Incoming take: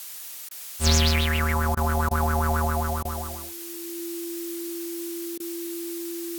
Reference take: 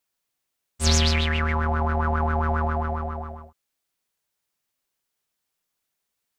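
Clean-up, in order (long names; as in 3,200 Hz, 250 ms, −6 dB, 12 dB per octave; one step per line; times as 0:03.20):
notch filter 340 Hz, Q 30
repair the gap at 0:00.49/0:01.75/0:02.09/0:03.03/0:05.38, 19 ms
noise reduction from a noise print 30 dB
level 0 dB, from 0:03.66 +9.5 dB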